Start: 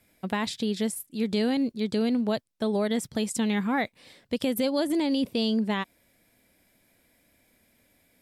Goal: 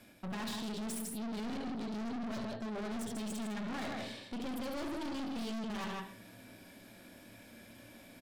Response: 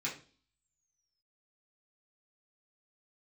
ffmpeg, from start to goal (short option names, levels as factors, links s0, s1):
-filter_complex "[0:a]lowpass=f=3500:p=1,bandreject=f=2000:w=5.3,areverse,acompressor=threshold=0.00891:ratio=4,areverse,aecho=1:1:69.97|154.5:0.398|0.447,asplit=2[s0][s1];[1:a]atrim=start_sample=2205,asetrate=34839,aresample=44100[s2];[s1][s2]afir=irnorm=-1:irlink=0,volume=0.501[s3];[s0][s3]amix=inputs=2:normalize=0,aeval=exprs='(tanh(251*val(0)+0.35)-tanh(0.35))/251':c=same,volume=3.16"